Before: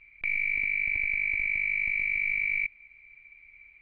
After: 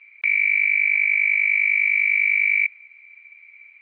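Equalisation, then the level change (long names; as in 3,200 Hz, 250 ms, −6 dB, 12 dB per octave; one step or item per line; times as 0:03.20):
high-pass filter 1,000 Hz 12 dB per octave
dynamic equaliser 1,700 Hz, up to +4 dB, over −38 dBFS, Q 1
high-frequency loss of the air 120 metres
+8.0 dB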